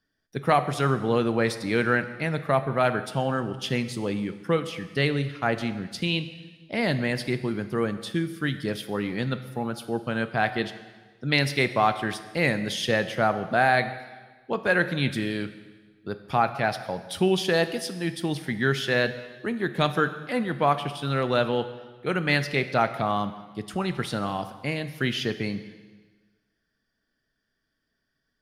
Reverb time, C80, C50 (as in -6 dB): 1.4 s, 13.5 dB, 12.0 dB